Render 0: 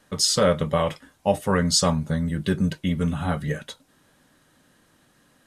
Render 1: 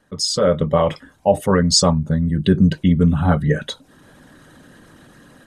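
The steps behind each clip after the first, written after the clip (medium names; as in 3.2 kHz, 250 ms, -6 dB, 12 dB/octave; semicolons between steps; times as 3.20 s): resonances exaggerated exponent 1.5; level rider gain up to 15 dB; trim -1 dB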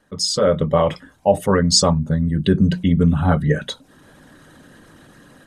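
hum notches 60/120/180/240 Hz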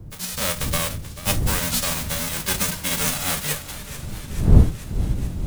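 formants flattened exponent 0.1; wind noise 110 Hz -15 dBFS; modulated delay 435 ms, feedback 73%, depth 97 cents, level -14.5 dB; trim -8.5 dB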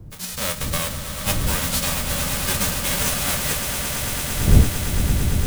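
echo with a slow build-up 113 ms, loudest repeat 8, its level -11.5 dB; trim -1 dB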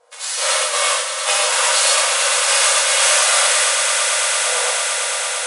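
brick-wall FIR band-pass 470–11000 Hz; gated-style reverb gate 190 ms flat, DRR -7 dB; trim +2.5 dB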